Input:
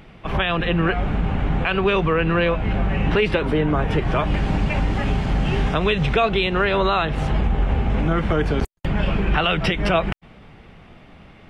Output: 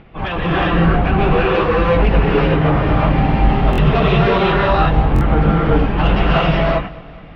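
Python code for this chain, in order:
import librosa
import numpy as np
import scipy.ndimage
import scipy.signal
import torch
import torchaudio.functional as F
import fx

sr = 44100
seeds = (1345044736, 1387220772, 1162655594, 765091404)

y = fx.dynamic_eq(x, sr, hz=860.0, q=2.9, threshold_db=-38.0, ratio=4.0, max_db=5)
y = fx.stretch_vocoder_free(y, sr, factor=0.64)
y = np.clip(10.0 ** (19.0 / 20.0) * y, -1.0, 1.0) / 10.0 ** (19.0 / 20.0)
y = scipy.signal.sosfilt(scipy.signal.butter(4, 4700.0, 'lowpass', fs=sr, output='sos'), y)
y = fx.high_shelf(y, sr, hz=3500.0, db=-10.5)
y = fx.echo_feedback(y, sr, ms=205, feedback_pct=59, wet_db=-21.5)
y = fx.rev_gated(y, sr, seeds[0], gate_ms=410, shape='rising', drr_db=-5.5)
y = fx.buffer_glitch(y, sr, at_s=(3.71, 5.14), block=1024, repeats=2)
y = y * librosa.db_to_amplitude(4.0)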